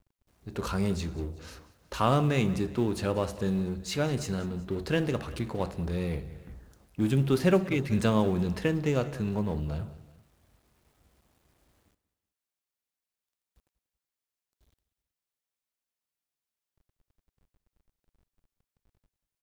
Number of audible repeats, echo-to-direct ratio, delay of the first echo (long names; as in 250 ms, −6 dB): 2, −17.0 dB, 188 ms